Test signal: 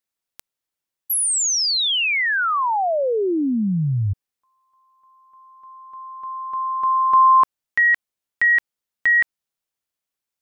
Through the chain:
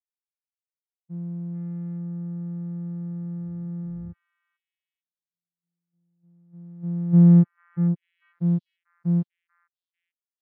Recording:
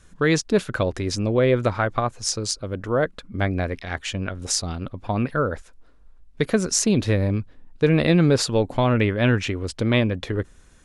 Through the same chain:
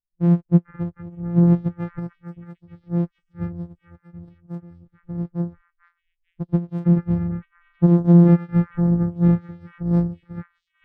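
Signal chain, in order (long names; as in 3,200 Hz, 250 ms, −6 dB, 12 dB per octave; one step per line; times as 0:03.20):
samples sorted by size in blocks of 256 samples
echo through a band-pass that steps 444 ms, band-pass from 1,600 Hz, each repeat 0.7 octaves, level −1 dB
every bin expanded away from the loudest bin 2.5 to 1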